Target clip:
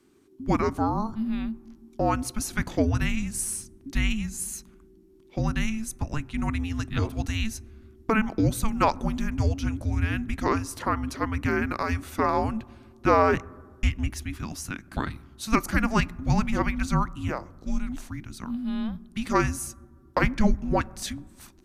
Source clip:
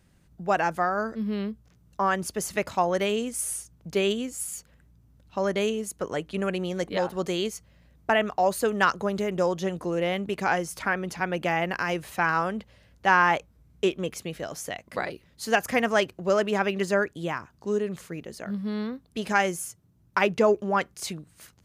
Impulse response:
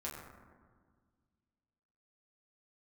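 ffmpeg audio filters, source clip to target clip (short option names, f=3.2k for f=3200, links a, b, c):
-filter_complex "[0:a]afreqshift=-440,asplit=2[a][b];[b]lowshelf=f=190:g=7[c];[1:a]atrim=start_sample=2205[d];[c][d]afir=irnorm=-1:irlink=0,volume=-21dB[e];[a][e]amix=inputs=2:normalize=0"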